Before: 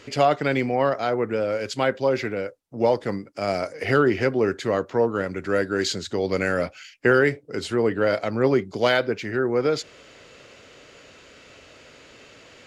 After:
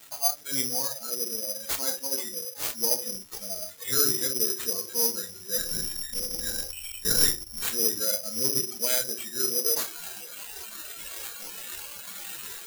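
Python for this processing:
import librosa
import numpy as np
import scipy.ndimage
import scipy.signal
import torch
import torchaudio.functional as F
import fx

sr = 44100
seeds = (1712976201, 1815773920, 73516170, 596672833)

y = x + 0.5 * 10.0 ** (-14.0 / 20.0) * np.diff(np.sign(x), prepend=np.sign(x[:1]))
y = fx.low_shelf(y, sr, hz=90.0, db=10.0)
y = fx.echo_feedback(y, sr, ms=660, feedback_pct=49, wet_db=-18.0)
y = fx.lpc_vocoder(y, sr, seeds[0], excitation='whisper', order=8, at=(5.57, 7.59))
y = fx.room_shoebox(y, sr, seeds[1], volume_m3=570.0, walls='furnished', distance_m=1.7)
y = fx.noise_reduce_blind(y, sr, reduce_db=22)
y = fx.quant_float(y, sr, bits=2)
y = fx.low_shelf(y, sr, hz=200.0, db=-7.0)
y = (np.kron(y[::8], np.eye(8)[0]) * 8)[:len(y)]
y = y * 10.0 ** (-15.5 / 20.0)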